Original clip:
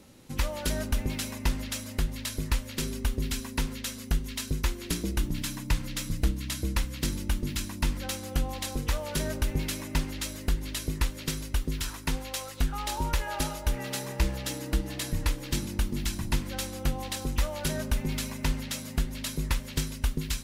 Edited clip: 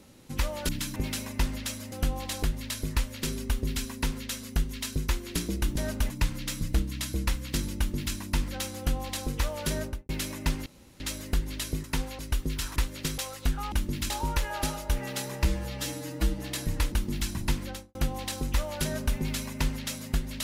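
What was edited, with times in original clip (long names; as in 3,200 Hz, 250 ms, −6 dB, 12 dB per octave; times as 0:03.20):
0:00.69–0:01.02: swap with 0:05.32–0:05.59
0:07.26–0:07.64: duplicate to 0:12.87
0:08.25–0:08.76: duplicate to 0:01.98
0:09.26–0:09.58: fade out and dull
0:10.15: splice in room tone 0.34 s
0:10.99–0:11.41: swap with 0:11.98–0:12.33
0:14.22–0:14.84: time-stretch 1.5×
0:15.38–0:15.76: remove
0:16.46–0:16.79: fade out and dull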